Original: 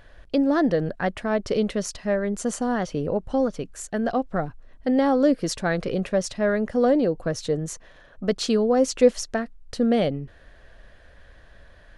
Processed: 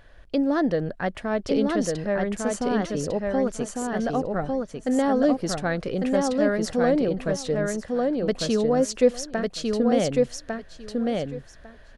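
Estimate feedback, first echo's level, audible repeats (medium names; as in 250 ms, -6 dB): 16%, -3.0 dB, 3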